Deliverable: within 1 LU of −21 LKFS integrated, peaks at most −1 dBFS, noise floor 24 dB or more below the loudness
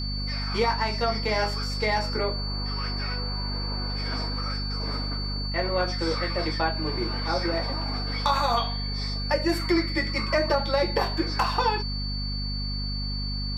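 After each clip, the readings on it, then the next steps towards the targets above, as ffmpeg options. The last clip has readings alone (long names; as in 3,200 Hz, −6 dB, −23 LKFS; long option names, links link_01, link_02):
mains hum 50 Hz; hum harmonics up to 250 Hz; level of the hum −28 dBFS; interfering tone 4,500 Hz; level of the tone −33 dBFS; integrated loudness −27.0 LKFS; sample peak −10.5 dBFS; target loudness −21.0 LKFS
→ -af "bandreject=frequency=50:width_type=h:width=6,bandreject=frequency=100:width_type=h:width=6,bandreject=frequency=150:width_type=h:width=6,bandreject=frequency=200:width_type=h:width=6,bandreject=frequency=250:width_type=h:width=6"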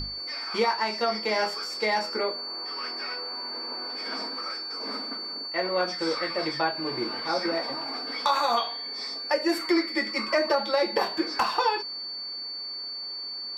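mains hum none found; interfering tone 4,500 Hz; level of the tone −33 dBFS
→ -af "bandreject=frequency=4500:width=30"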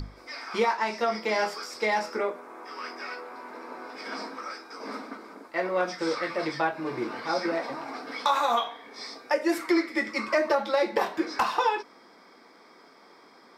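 interfering tone none found; integrated loudness −28.5 LKFS; sample peak −10.5 dBFS; target loudness −21.0 LKFS
→ -af "volume=7.5dB"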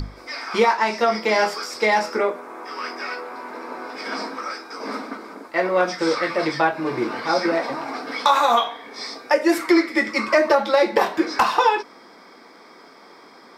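integrated loudness −21.0 LKFS; sample peak −3.0 dBFS; background noise floor −47 dBFS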